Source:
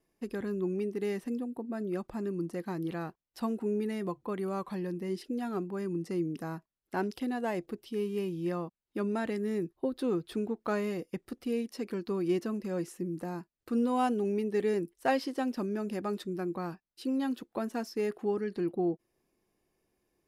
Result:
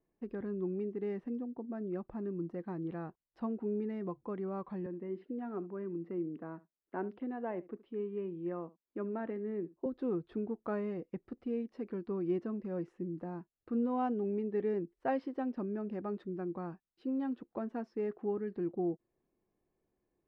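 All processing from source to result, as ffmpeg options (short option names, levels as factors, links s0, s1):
-filter_complex "[0:a]asettb=1/sr,asplit=3[s0][s1][s2];[s0]atrim=end=4.864[s3];[s1]atrim=start=4.86:end=9.86,asetpts=PTS-STARTPTS,afade=t=in:d=0.004:c=qsin,afade=t=out:st=4.996:d=0.004:c=qsin,acrossover=split=190 3400:gain=0.224 1 0.0891[s4][s5][s6];[s4][s5][s6]amix=inputs=3:normalize=0,bandreject=f=790:w=14,aecho=1:1:71:0.106,atrim=end_sample=220500[s7];[s2]atrim=start=9.856[s8];[s3][s7]acrossfade=d=0.004:c1=hsin:c2=qsin[s9];[s9][s8]acrossfade=d=0.004:c1=qsin:c2=hsin,lowpass=2100,tiltshelf=f=1300:g=3.5,volume=0.447"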